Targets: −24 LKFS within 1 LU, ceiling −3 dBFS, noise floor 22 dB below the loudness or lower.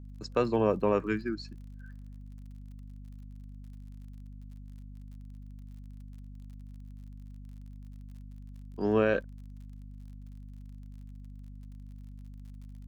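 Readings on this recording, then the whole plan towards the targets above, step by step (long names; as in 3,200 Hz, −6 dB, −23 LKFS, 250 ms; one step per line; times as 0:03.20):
crackle rate 44 per second; mains hum 50 Hz; hum harmonics up to 250 Hz; level of the hum −43 dBFS; integrated loudness −29.5 LKFS; sample peak −13.5 dBFS; target loudness −24.0 LKFS
→ click removal
hum removal 50 Hz, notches 5
level +5.5 dB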